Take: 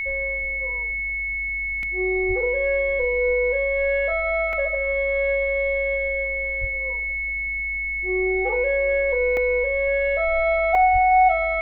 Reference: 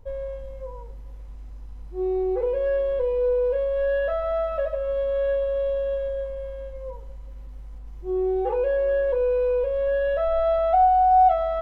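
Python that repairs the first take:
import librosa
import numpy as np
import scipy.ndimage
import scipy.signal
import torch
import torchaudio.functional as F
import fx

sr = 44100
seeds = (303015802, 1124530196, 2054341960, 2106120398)

y = fx.notch(x, sr, hz=2200.0, q=30.0)
y = fx.fix_deplosive(y, sr, at_s=(2.27, 6.6, 10.92))
y = fx.fix_interpolate(y, sr, at_s=(1.83, 4.53, 9.37, 10.75), length_ms=1.9)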